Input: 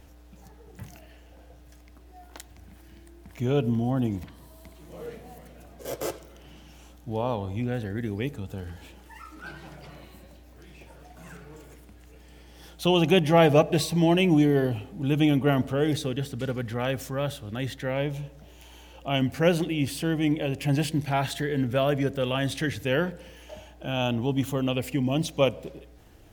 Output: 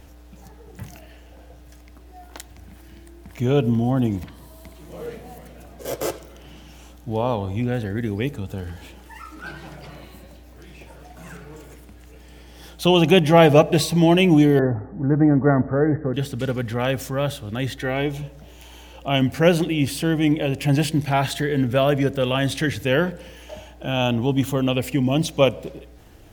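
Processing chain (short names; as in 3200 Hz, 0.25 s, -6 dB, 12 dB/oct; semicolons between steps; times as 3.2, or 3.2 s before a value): 14.59–16.14 steep low-pass 1900 Hz 96 dB/oct; 17.76–18.22 comb 2.7 ms, depth 56%; gain +5.5 dB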